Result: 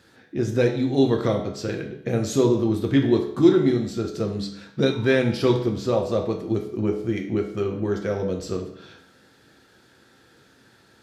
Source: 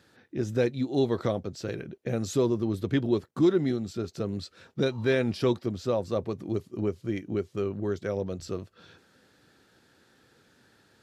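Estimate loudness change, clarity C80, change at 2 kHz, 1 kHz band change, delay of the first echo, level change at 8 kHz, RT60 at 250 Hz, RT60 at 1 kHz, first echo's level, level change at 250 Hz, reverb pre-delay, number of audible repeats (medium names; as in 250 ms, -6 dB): +6.0 dB, 10.5 dB, +6.5 dB, +6.0 dB, no echo, +6.0 dB, 0.70 s, 0.70 s, no echo, +6.5 dB, 7 ms, no echo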